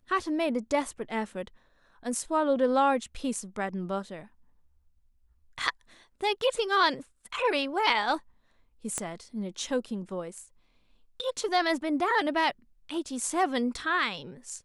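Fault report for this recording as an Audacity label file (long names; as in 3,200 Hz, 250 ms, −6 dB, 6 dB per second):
8.980000	8.980000	click −17 dBFS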